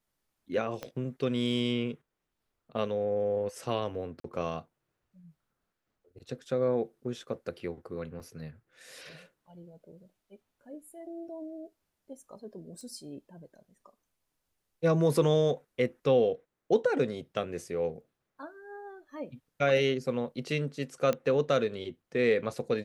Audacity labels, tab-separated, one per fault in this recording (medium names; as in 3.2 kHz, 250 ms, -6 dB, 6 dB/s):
0.830000	0.830000	pop -22 dBFS
4.200000	4.240000	dropout 43 ms
8.200000	8.200000	dropout 2.3 ms
12.810000	12.810000	pop -37 dBFS
21.130000	21.130000	pop -17 dBFS